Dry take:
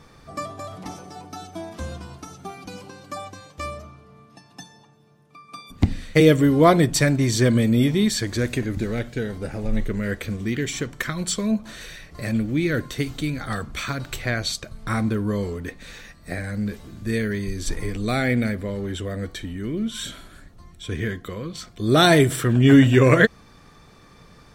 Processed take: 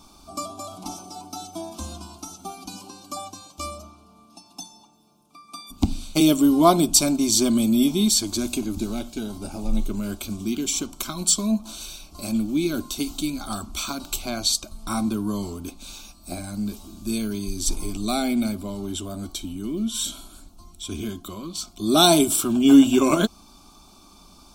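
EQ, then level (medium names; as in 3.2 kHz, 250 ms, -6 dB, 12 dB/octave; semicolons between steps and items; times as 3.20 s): Butterworth band-stop 1.9 kHz, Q 4.5; treble shelf 3.9 kHz +9 dB; static phaser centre 480 Hz, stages 6; +1.5 dB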